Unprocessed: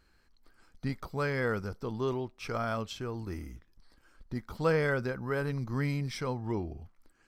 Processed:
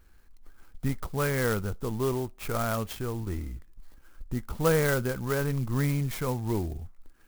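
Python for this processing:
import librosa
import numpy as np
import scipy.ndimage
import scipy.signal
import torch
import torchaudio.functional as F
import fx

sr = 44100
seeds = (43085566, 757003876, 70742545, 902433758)

y = fx.low_shelf(x, sr, hz=63.0, db=11.5)
y = fx.clock_jitter(y, sr, seeds[0], jitter_ms=0.053)
y = y * librosa.db_to_amplitude(3.0)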